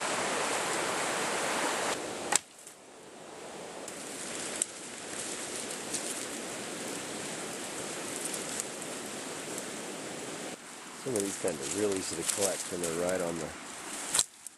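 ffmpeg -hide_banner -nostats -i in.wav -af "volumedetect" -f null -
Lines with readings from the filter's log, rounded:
mean_volume: -35.4 dB
max_volume: -7.5 dB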